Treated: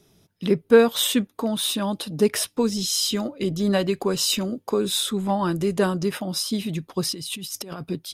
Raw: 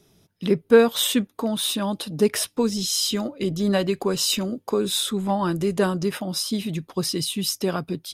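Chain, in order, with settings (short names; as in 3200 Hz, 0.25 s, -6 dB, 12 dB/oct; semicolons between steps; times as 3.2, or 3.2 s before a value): 7.11–7.82 negative-ratio compressor -34 dBFS, ratio -1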